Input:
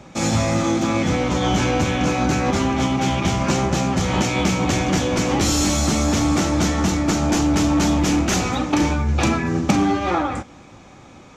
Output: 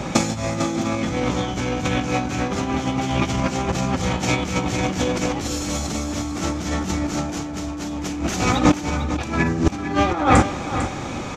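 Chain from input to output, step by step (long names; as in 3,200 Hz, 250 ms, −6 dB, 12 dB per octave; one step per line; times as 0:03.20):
compressor whose output falls as the input rises −26 dBFS, ratio −0.5
on a send: single-tap delay 450 ms −10.5 dB
on the sum: level +6 dB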